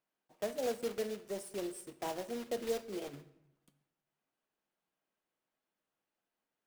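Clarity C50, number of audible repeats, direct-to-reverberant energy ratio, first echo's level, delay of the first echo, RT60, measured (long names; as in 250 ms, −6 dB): 15.0 dB, no echo audible, 11.0 dB, no echo audible, no echo audible, 0.85 s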